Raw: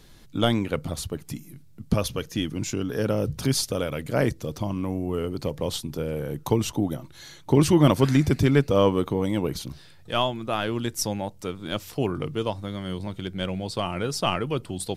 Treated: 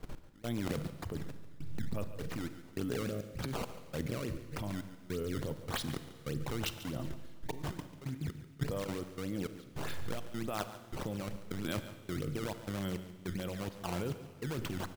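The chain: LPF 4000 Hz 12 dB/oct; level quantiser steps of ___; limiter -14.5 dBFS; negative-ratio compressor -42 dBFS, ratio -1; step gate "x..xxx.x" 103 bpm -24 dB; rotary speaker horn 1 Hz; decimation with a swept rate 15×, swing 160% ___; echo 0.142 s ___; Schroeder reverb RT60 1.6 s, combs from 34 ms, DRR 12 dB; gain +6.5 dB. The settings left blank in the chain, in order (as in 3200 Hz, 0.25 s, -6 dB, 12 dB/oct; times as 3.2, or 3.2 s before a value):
17 dB, 3.4 Hz, -14.5 dB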